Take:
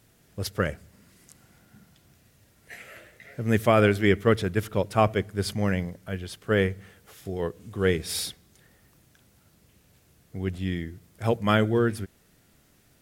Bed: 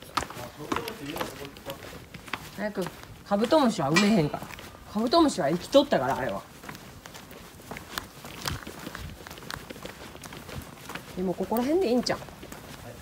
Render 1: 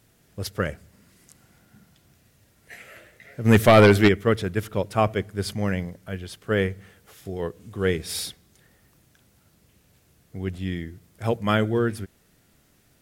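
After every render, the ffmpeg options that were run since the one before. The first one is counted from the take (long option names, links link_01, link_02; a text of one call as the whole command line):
ffmpeg -i in.wav -filter_complex "[0:a]asplit=3[link_01][link_02][link_03];[link_01]afade=type=out:start_time=3.44:duration=0.02[link_04];[link_02]aeval=exprs='0.447*sin(PI/2*1.78*val(0)/0.447)':channel_layout=same,afade=type=in:start_time=3.44:duration=0.02,afade=type=out:start_time=4.07:duration=0.02[link_05];[link_03]afade=type=in:start_time=4.07:duration=0.02[link_06];[link_04][link_05][link_06]amix=inputs=3:normalize=0" out.wav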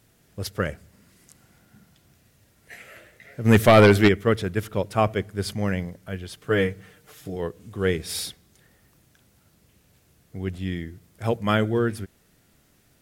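ffmpeg -i in.wav -filter_complex "[0:a]asettb=1/sr,asplit=3[link_01][link_02][link_03];[link_01]atrim=end=6.374[link_04];[link_02]atrim=start=6.37:end=7.36,asetpts=PTS-STARTPTS,afade=type=in:duration=0.004:curve=qsin,afade=type=out:start_time=0.986:duration=0.004:curve=qsin,aecho=1:1:6.6:0.65,atrim=end_sample=43659[link_05];[link_03]atrim=start=7.356[link_06];[link_04][link_05]acrossfade=duration=0.004:curve1=hsin:curve2=qsin[link_07];[link_07][link_06]acrossfade=duration=0.004:curve1=qsin:curve2=hsin" out.wav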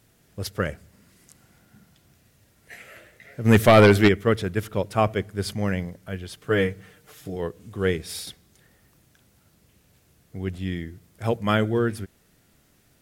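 ffmpeg -i in.wav -filter_complex "[0:a]asplit=2[link_01][link_02];[link_01]atrim=end=8.27,asetpts=PTS-STARTPTS,afade=type=out:start_time=7.87:duration=0.4:silence=0.473151[link_03];[link_02]atrim=start=8.27,asetpts=PTS-STARTPTS,afade=type=in:duration=0.004:curve=hsin:silence=0.473151[link_04];[link_03][link_04]concat=n=2:v=0:a=1" out.wav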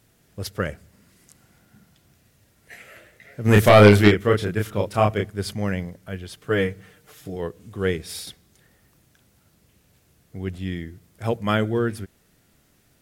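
ffmpeg -i in.wav -filter_complex "[0:a]asettb=1/sr,asplit=3[link_01][link_02][link_03];[link_01]atrim=end=3.454[link_04];[link_02]atrim=start=3.45:end=5.3,asetpts=PTS-STARTPTS,afade=type=in:duration=0.004:curve=qsin,afade=type=out:start_time=1.846:duration=0.004:curve=qsin,asplit=2[link_05][link_06];[link_06]adelay=29,volume=-2.5dB[link_07];[link_05][link_07]amix=inputs=2:normalize=0,atrim=end_sample=81585[link_08];[link_03]atrim=start=5.296[link_09];[link_04][link_08]acrossfade=duration=0.004:curve1=hsin:curve2=qsin[link_10];[link_10][link_09]acrossfade=duration=0.004:curve1=qsin:curve2=hsin" out.wav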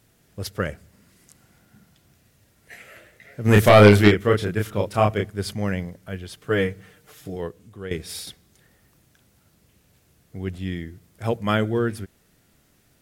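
ffmpeg -i in.wav -filter_complex "[0:a]asplit=2[link_01][link_02];[link_01]atrim=end=7.91,asetpts=PTS-STARTPTS,afade=type=out:start_time=7.34:duration=0.57:silence=0.199526[link_03];[link_02]atrim=start=7.91,asetpts=PTS-STARTPTS,afade=type=in:duration=0.004:curve=hsin:silence=0.199526[link_04];[link_03][link_04]concat=n=2:v=0:a=1" out.wav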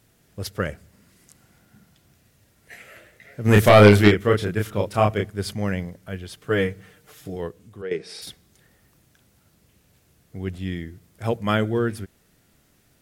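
ffmpeg -i in.wav -filter_complex "[0:a]asplit=3[link_01][link_02][link_03];[link_01]afade=type=out:start_time=7.81:duration=0.02[link_04];[link_02]highpass=frequency=160:width=0.5412,highpass=frequency=160:width=1.3066,equalizer=frequency=170:width_type=q:width=4:gain=-4,equalizer=frequency=250:width_type=q:width=4:gain=-7,equalizer=frequency=430:width_type=q:width=4:gain=6,equalizer=frequency=1100:width_type=q:width=4:gain=-3,equalizer=frequency=3400:width_type=q:width=4:gain=-7,equalizer=frequency=7000:width_type=q:width=4:gain=-10,lowpass=frequency=7700:width=0.5412,lowpass=frequency=7700:width=1.3066,afade=type=in:start_time=7.81:duration=0.02,afade=type=out:start_time=8.21:duration=0.02[link_05];[link_03]afade=type=in:start_time=8.21:duration=0.02[link_06];[link_04][link_05][link_06]amix=inputs=3:normalize=0" out.wav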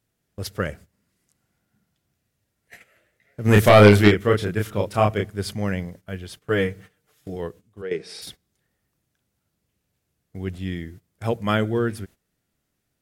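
ffmpeg -i in.wav -af "agate=range=-15dB:threshold=-42dB:ratio=16:detection=peak" out.wav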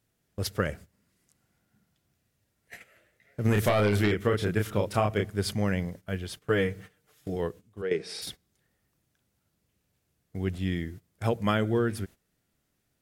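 ffmpeg -i in.wav -af "alimiter=limit=-8.5dB:level=0:latency=1:release=22,acompressor=threshold=-21dB:ratio=6" out.wav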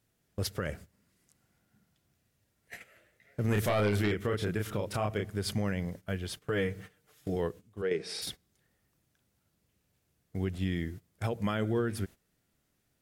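ffmpeg -i in.wav -af "alimiter=limit=-20.5dB:level=0:latency=1:release=148" out.wav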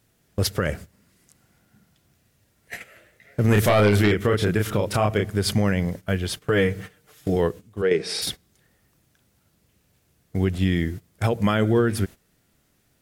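ffmpeg -i in.wav -af "volume=10.5dB" out.wav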